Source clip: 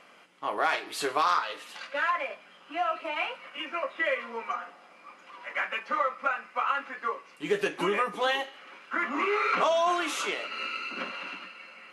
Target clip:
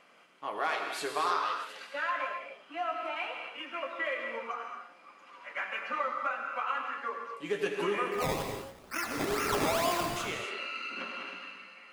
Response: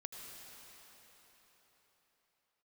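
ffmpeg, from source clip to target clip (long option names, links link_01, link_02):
-filter_complex "[0:a]asplit=3[link_01][link_02][link_03];[link_01]afade=type=out:start_time=8.11:duration=0.02[link_04];[link_02]acrusher=samples=21:mix=1:aa=0.000001:lfo=1:lforange=21:lforate=2.2,afade=type=in:start_time=8.11:duration=0.02,afade=type=out:start_time=10.15:duration=0.02[link_05];[link_03]afade=type=in:start_time=10.15:duration=0.02[link_06];[link_04][link_05][link_06]amix=inputs=3:normalize=0[link_07];[1:a]atrim=start_sample=2205,afade=type=out:start_time=0.34:duration=0.01,atrim=end_sample=15435[link_08];[link_07][link_08]afir=irnorm=-1:irlink=0"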